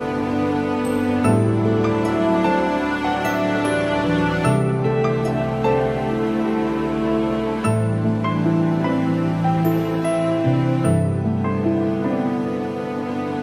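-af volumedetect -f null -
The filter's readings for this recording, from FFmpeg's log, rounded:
mean_volume: -19.4 dB
max_volume: -5.3 dB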